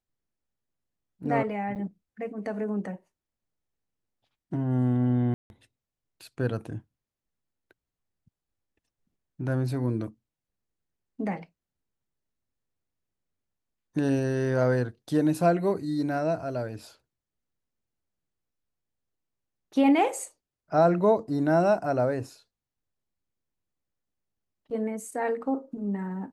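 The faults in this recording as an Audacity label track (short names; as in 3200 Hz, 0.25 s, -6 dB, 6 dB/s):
1.750000	1.760000	gap 8.6 ms
5.340000	5.500000	gap 0.161 s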